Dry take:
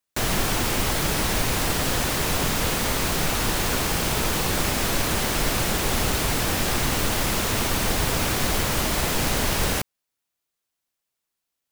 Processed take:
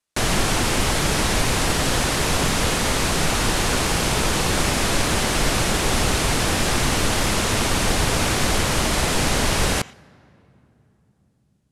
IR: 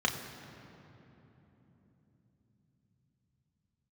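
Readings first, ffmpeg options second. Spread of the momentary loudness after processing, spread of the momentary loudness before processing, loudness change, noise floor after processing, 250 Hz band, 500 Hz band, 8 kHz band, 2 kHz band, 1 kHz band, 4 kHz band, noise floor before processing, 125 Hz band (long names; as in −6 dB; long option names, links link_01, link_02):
0 LU, 0 LU, +2.5 dB, −63 dBFS, +3.5 dB, +3.5 dB, +3.0 dB, +3.5 dB, +3.5 dB, +3.5 dB, −83 dBFS, +3.5 dB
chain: -filter_complex "[0:a]lowpass=frequency=11000:width=0.5412,lowpass=frequency=11000:width=1.3066,asplit=2[link_01][link_02];[1:a]atrim=start_sample=2205,lowshelf=frequency=330:gain=-8.5,adelay=83[link_03];[link_02][link_03]afir=irnorm=-1:irlink=0,volume=-27.5dB[link_04];[link_01][link_04]amix=inputs=2:normalize=0,volume=3.5dB"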